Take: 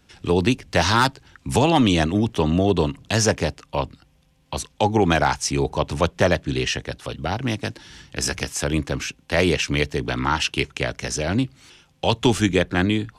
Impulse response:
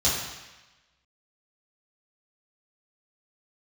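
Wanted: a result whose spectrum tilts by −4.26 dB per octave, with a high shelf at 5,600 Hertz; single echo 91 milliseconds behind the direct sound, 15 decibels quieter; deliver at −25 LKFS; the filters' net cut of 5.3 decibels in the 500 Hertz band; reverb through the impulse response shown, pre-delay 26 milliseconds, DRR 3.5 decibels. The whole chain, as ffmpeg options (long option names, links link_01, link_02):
-filter_complex "[0:a]equalizer=frequency=500:width_type=o:gain=-7,highshelf=frequency=5600:gain=4.5,aecho=1:1:91:0.178,asplit=2[link_01][link_02];[1:a]atrim=start_sample=2205,adelay=26[link_03];[link_02][link_03]afir=irnorm=-1:irlink=0,volume=-16.5dB[link_04];[link_01][link_04]amix=inputs=2:normalize=0,volume=-5dB"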